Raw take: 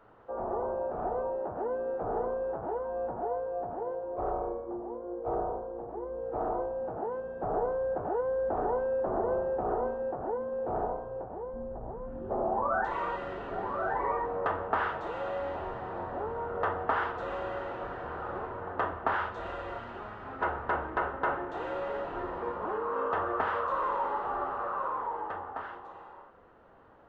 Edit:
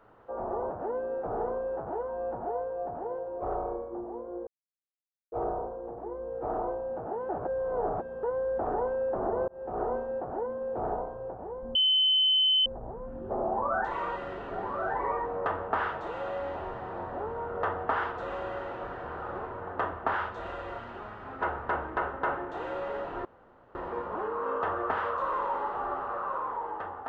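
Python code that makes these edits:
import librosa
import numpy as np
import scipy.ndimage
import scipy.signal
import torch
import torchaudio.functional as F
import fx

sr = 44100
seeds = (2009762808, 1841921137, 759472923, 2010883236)

y = fx.edit(x, sr, fx.cut(start_s=0.7, length_s=0.76),
    fx.insert_silence(at_s=5.23, length_s=0.85),
    fx.reverse_span(start_s=7.2, length_s=0.94),
    fx.fade_in_span(start_s=9.39, length_s=0.36),
    fx.insert_tone(at_s=11.66, length_s=0.91, hz=3050.0, db=-20.5),
    fx.insert_room_tone(at_s=22.25, length_s=0.5), tone=tone)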